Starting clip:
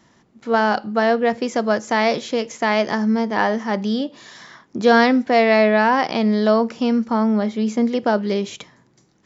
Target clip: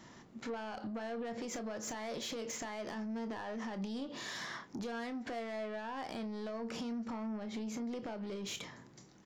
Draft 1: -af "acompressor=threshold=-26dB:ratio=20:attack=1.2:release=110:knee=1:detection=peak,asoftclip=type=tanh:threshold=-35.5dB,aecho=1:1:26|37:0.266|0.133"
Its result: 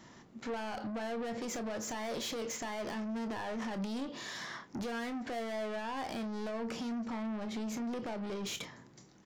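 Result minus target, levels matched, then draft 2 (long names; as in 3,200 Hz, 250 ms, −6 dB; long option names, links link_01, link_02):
downward compressor: peak gain reduction −6.5 dB
-af "acompressor=threshold=-33dB:ratio=20:attack=1.2:release=110:knee=1:detection=peak,asoftclip=type=tanh:threshold=-35.5dB,aecho=1:1:26|37:0.266|0.133"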